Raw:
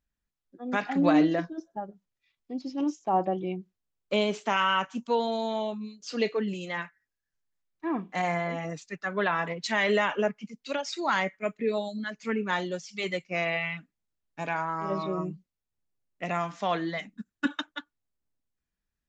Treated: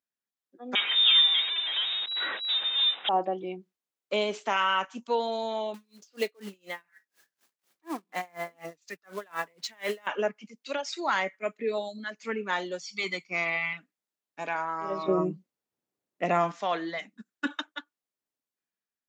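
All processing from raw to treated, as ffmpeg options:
-filter_complex "[0:a]asettb=1/sr,asplit=3[a][b][c];[a]atrim=end=0.754[d];[b]atrim=start=0.75:end=3.09,asetpts=PTS-STARTPTS,afade=t=in:d=0.004:c=qsin,afade=t=out:st=2.336:d=0.004:c=qsin,aeval=exprs='val(0)+0.5*0.0531*sgn(val(0))':c=same,acrusher=bits=5:mix=0:aa=0.5,lowpass=f=3.3k:t=q:w=0.5098,lowpass=f=3.3k:t=q:w=0.6013,lowpass=f=3.3k:t=q:w=0.9,lowpass=f=3.3k:t=q:w=2.563,afreqshift=-3900[e];[c]atrim=start=3.086[f];[d][e]acrossfade=d=0.004:c1=hsin:c2=qsin[g];[g][f]acrossfade=d=0.004:c1=qsin:c2=hsin,asettb=1/sr,asplit=3[h][i][j];[h]atrim=end=5.744[k];[i]atrim=start=5.74:end=10.07,asetpts=PTS-STARTPTS,afade=t=in:d=0.004:c=qsin,afade=t=out:st=4.326:d=0.004:c=qsin,acompressor=mode=upward:threshold=-31dB:ratio=2.5:attack=3.2:release=140:knee=2.83:detection=peak,acrusher=bits=4:mode=log:mix=0:aa=0.000001,aeval=exprs='val(0)*pow(10,-32*(0.5-0.5*cos(2*PI*4.1*n/s))/20)':c=same[l];[j]atrim=start=10.066[m];[k][l]acrossfade=d=0.004:c1=hsin:c2=qsin[n];[n][m]acrossfade=d=0.004:c1=qsin:c2=hsin,asettb=1/sr,asplit=3[o][p][q];[o]atrim=end=12.814[r];[p]atrim=start=12.81:end=13.73,asetpts=PTS-STARTPTS,afade=t=in:d=0.004:c=qsin,afade=t=out:st=0.916:d=0.004:c=qsin,equalizer=f=4.5k:w=5.4:g=8.5,aecho=1:1:0.9:0.62,atrim=end_sample=40572[s];[q]atrim=start=13.726[t];[r][s]acrossfade=d=0.004:c1=hsin:c2=qsin[u];[u][t]acrossfade=d=0.004:c1=qsin:c2=hsin,asettb=1/sr,asplit=3[v][w][x];[v]atrim=end=15.084[y];[w]atrim=start=15.08:end=16.52,asetpts=PTS-STARTPTS,afade=t=in:d=0.004:c=qsin,afade=t=out:st=1.436:d=0.004:c=qsin,tiltshelf=f=800:g=5.5,acontrast=67[z];[x]atrim=start=16.516[aa];[y][z]acrossfade=d=0.004:c1=hsin:c2=qsin[ab];[ab][aa]acrossfade=d=0.004:c1=qsin:c2=hsin,dynaudnorm=f=100:g=9:m=5dB,highpass=300,volume=-5.5dB"

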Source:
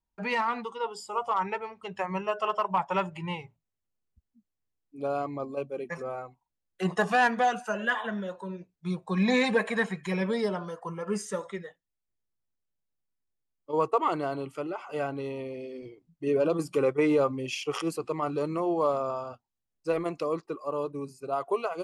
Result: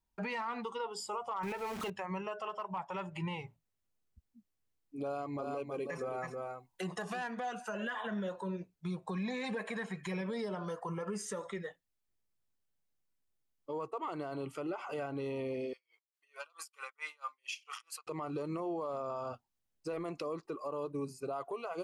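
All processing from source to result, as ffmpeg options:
-filter_complex "[0:a]asettb=1/sr,asplit=3[a][b][c];[a]atrim=end=1.434[d];[b]atrim=start=1.43:end=1.9,asetpts=PTS-STARTPTS,afade=t=in:d=0.004:c=qsin,afade=t=out:st=0.466:d=0.004:c=qsin,aeval=exprs='val(0)+0.5*0.00891*sgn(val(0))':c=same,acontrast=37[e];[c]atrim=start=1.896[f];[d][e]acrossfade=d=0.004:c1=hsin:c2=qsin[g];[g][f]acrossfade=d=0.004:c1=qsin:c2=hsin,asettb=1/sr,asplit=3[h][i][j];[h]atrim=end=5.064[k];[i]atrim=start=5.06:end=7.24,asetpts=PTS-STARTPTS,afade=t=in:d=0.004:c=qsin,afade=t=out:st=2.176:d=0.004:c=qsin,highshelf=f=4.7k:g=5.5,aecho=1:1:322:0.422,atrim=end_sample=96138[l];[j]atrim=start=7.236[m];[k][l]acrossfade=d=0.004:c1=hsin:c2=qsin[n];[n][m]acrossfade=d=0.004:c1=qsin:c2=hsin,asettb=1/sr,asplit=3[o][p][q];[o]atrim=end=15.734[r];[p]atrim=start=15.73:end=18.07,asetpts=PTS-STARTPTS,afade=t=in:d=0.004:c=qsin,afade=t=out:st=2.336:d=0.004:c=qsin,highpass=f=1.1k:w=0.5412,highpass=f=1.1k:w=1.3066,aeval=exprs='val(0)*pow(10,-32*(0.5-0.5*cos(2*PI*4.5*n/s))/20)':c=same[s];[q]atrim=start=18.066[t];[r][s]acrossfade=d=0.004:c1=hsin:c2=qsin[u];[u][t]acrossfade=d=0.004:c1=qsin:c2=hsin,acompressor=threshold=-34dB:ratio=6,alimiter=level_in=7.5dB:limit=-24dB:level=0:latency=1:release=37,volume=-7.5dB,volume=1.5dB"

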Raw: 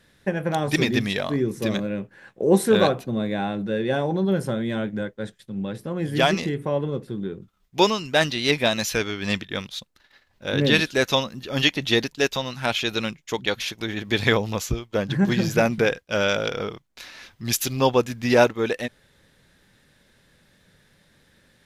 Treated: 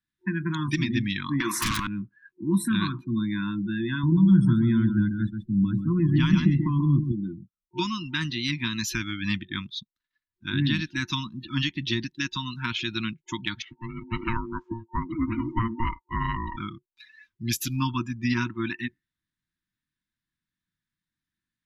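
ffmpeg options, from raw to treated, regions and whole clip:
-filter_complex "[0:a]asettb=1/sr,asplit=3[a][b][c];[a]atrim=end=1.404[d];[b]atrim=start=1.4:end=1.87,asetpts=PTS-STARTPTS,afade=t=in:d=0.004:c=qsin,afade=t=out:st=0.466:d=0.004:c=qsin,highpass=f=940:t=q:w=2.7,aeval=exprs='0.299*sin(PI/2*8.91*val(0)/0.299)':c=same[e];[c]atrim=start=1.866[f];[d][e]acrossfade=d=0.004:c1=hsin:c2=qsin[g];[g][f]acrossfade=d=0.004:c1=qsin:c2=hsin,asettb=1/sr,asplit=3[h][i][j];[h]atrim=end=4.034[k];[i]atrim=start=4.03:end=7.12,asetpts=PTS-STARTPTS,afade=t=in:d=0.004:c=qsin,afade=t=out:st=3.086:d=0.004:c=qsin,lowshelf=f=290:g=11,aecho=1:1:135:0.447,atrim=end_sample=136269[l];[j]atrim=start=7.116[m];[k][l]acrossfade=d=0.004:c1=hsin:c2=qsin[n];[n][m]acrossfade=d=0.004:c1=qsin:c2=hsin,asettb=1/sr,asplit=3[o][p][q];[o]atrim=end=13.624[r];[p]atrim=start=13.62:end=16.57,asetpts=PTS-STARTPTS,afade=t=in:d=0.004:c=qsin,afade=t=out:st=2.946:d=0.004:c=qsin,lowpass=1.7k,aeval=exprs='val(0)*sin(2*PI*460*n/s)':c=same[s];[q]atrim=start=16.566[t];[r][s]acrossfade=d=0.004:c1=hsin:c2=qsin[u];[u][t]acrossfade=d=0.004:c1=qsin:c2=hsin,afftdn=nr=30:nf=-35,afftfilt=real='re*(1-between(b*sr/4096,360,910))':imag='im*(1-between(b*sr/4096,360,910))':win_size=4096:overlap=0.75,acrossover=split=220[v][w];[w]acompressor=threshold=-26dB:ratio=10[x];[v][x]amix=inputs=2:normalize=0"

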